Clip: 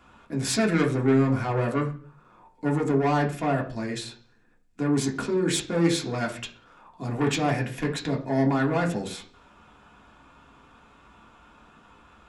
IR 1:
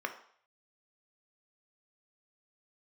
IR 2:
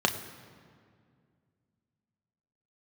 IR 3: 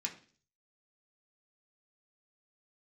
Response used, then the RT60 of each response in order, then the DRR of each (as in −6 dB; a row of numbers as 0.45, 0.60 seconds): 3; 0.60, 2.1, 0.45 seconds; 5.5, 4.5, −1.0 decibels